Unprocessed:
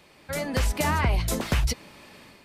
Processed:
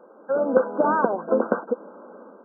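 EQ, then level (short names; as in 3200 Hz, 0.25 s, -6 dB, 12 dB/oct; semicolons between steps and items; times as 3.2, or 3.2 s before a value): brick-wall FIR band-pass 190–1600 Hz; bell 500 Hz +11.5 dB 0.32 oct; +5.5 dB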